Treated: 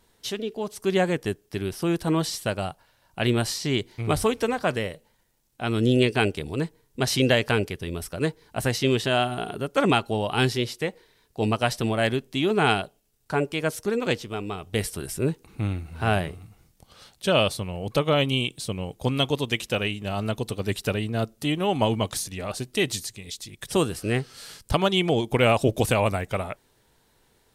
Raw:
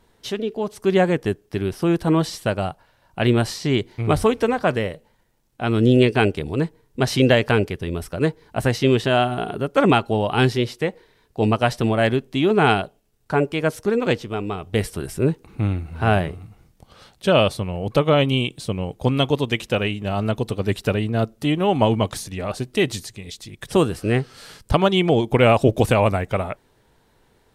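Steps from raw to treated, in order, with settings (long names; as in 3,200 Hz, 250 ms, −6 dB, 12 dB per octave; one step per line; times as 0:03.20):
high-shelf EQ 3,200 Hz +9.5 dB
level −5.5 dB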